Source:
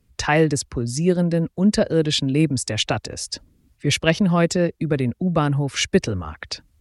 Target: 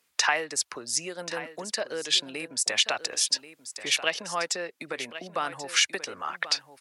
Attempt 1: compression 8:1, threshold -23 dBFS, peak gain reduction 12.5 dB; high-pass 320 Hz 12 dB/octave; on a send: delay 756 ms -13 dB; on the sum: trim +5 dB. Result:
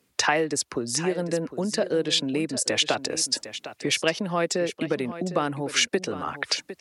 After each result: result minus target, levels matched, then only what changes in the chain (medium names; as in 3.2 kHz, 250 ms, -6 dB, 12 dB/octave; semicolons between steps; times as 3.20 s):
250 Hz band +12.5 dB; echo 328 ms early
change: high-pass 850 Hz 12 dB/octave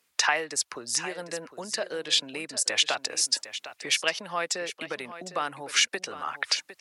echo 328 ms early
change: delay 1084 ms -13 dB